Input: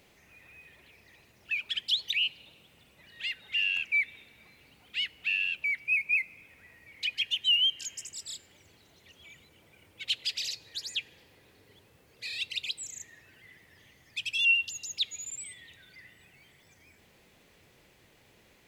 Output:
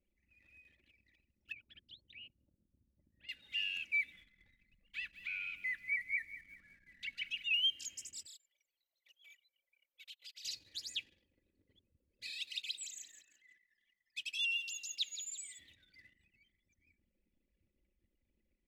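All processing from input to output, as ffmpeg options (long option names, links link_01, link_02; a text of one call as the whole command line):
ffmpeg -i in.wav -filter_complex "[0:a]asettb=1/sr,asplit=3[link_01][link_02][link_03];[link_01]atrim=end=1.524[link_04];[link_02]atrim=start=1.52:end=3.29,asetpts=PTS-STARTPTS,afade=type=in:duration=0.004:curve=qsin,afade=type=out:start_time=1.766:duration=0.004:curve=qsin,lowpass=1000,equalizer=frequency=110:width=1.4:gain=4[link_05];[link_03]atrim=start=3.286[link_06];[link_04][link_05]acrossfade=duration=0.004:curve1=hsin:curve2=qsin[link_07];[link_07][link_06]acrossfade=duration=0.004:curve1=qsin:curve2=hsin,asettb=1/sr,asplit=3[link_08][link_09][link_10];[link_08]atrim=end=4.124[link_11];[link_09]atrim=start=4.12:end=7.54,asetpts=PTS-STARTPTS,afade=type=in:duration=0.004:curve=qsin,afade=type=out:start_time=3.416:duration=0.004:curve=qsin,acrossover=split=3400[link_12][link_13];[link_13]acompressor=threshold=-46dB:ratio=4:attack=1:release=60[link_14];[link_12][link_14]amix=inputs=2:normalize=0,afreqshift=-260,aecho=1:1:192|384|576|768:0.2|0.0758|0.0288|0.0109,atrim=end_sample=150822[link_15];[link_10]atrim=start=7.536[link_16];[link_11][link_15]acrossfade=duration=0.004:curve1=hsin:curve2=qsin[link_17];[link_17][link_16]acrossfade=duration=0.004:curve1=qsin:curve2=hsin,asettb=1/sr,asplit=3[link_18][link_19][link_20];[link_18]atrim=end=8.264[link_21];[link_19]atrim=start=8.26:end=10.45,asetpts=PTS-STARTPTS,afade=type=in:duration=0.004:curve=qsin,afade=type=out:start_time=2.186:duration=0.004:curve=qsin,highpass=frequency=520:width=0.5412,highpass=frequency=520:width=1.3066,acompressor=threshold=-47dB:ratio=3:attack=3.2:release=140:knee=1:detection=peak,aeval=exprs='val(0)+0.000282*sin(2*PI*12000*n/s)':channel_layout=same[link_22];[link_20]atrim=start=10.446[link_23];[link_21][link_22]acrossfade=duration=0.004:curve1=hsin:curve2=qsin[link_24];[link_24][link_23]acrossfade=duration=0.004:curve1=qsin:curve2=hsin,asettb=1/sr,asplit=3[link_25][link_26][link_27];[link_25]atrim=end=12.304[link_28];[link_26]atrim=start=12.3:end=15.59,asetpts=PTS-STARTPTS,afade=type=in:duration=0.004:curve=qsin,afade=type=out:start_time=3.286:duration=0.004:curve=qsin,highpass=frequency=750:poles=1,aecho=1:1:171|342|513|684:0.266|0.106|0.0426|0.017,atrim=end_sample=145089[link_29];[link_27]atrim=start=15.586[link_30];[link_28][link_29]acrossfade=duration=0.004:curve1=hsin:curve2=qsin[link_31];[link_31][link_30]acrossfade=duration=0.004:curve1=qsin:curve2=hsin,anlmdn=0.000398,equalizer=frequency=890:width_type=o:width=1.9:gain=-11.5,aecho=1:1:3.5:0.48,volume=-6.5dB" out.wav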